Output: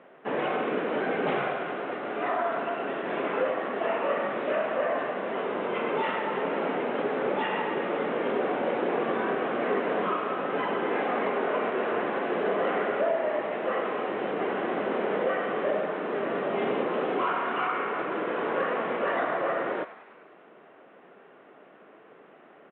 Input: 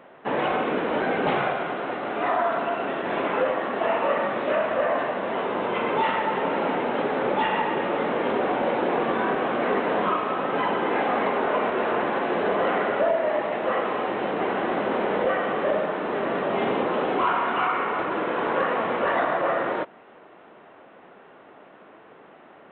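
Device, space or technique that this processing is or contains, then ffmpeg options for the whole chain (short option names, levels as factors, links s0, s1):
frequency-shifting delay pedal into a guitar cabinet: -filter_complex "[0:a]asplit=7[s0][s1][s2][s3][s4][s5][s6];[s1]adelay=99,afreqshift=150,volume=0.15[s7];[s2]adelay=198,afreqshift=300,volume=0.0902[s8];[s3]adelay=297,afreqshift=450,volume=0.0537[s9];[s4]adelay=396,afreqshift=600,volume=0.0324[s10];[s5]adelay=495,afreqshift=750,volume=0.0195[s11];[s6]adelay=594,afreqshift=900,volume=0.0116[s12];[s0][s7][s8][s9][s10][s11][s12]amix=inputs=7:normalize=0,highpass=100,equalizer=f=100:t=q:w=4:g=-8,equalizer=f=420:t=q:w=4:g=3,equalizer=f=900:t=q:w=4:g=-4,lowpass=f=3500:w=0.5412,lowpass=f=3500:w=1.3066,volume=0.631"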